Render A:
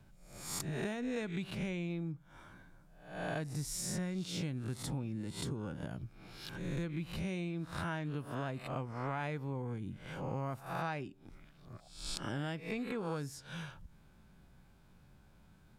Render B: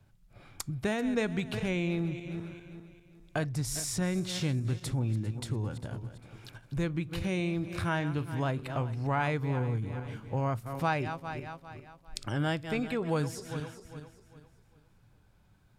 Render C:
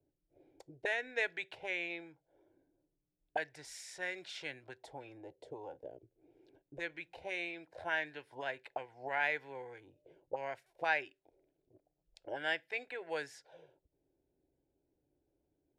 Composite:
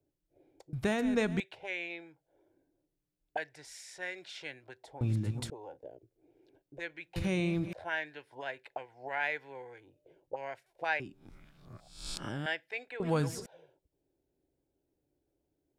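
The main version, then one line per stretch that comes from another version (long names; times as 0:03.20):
C
0:00.73–0:01.40: punch in from B
0:05.01–0:05.50: punch in from B
0:07.16–0:07.73: punch in from B
0:11.00–0:12.46: punch in from A
0:13.00–0:13.46: punch in from B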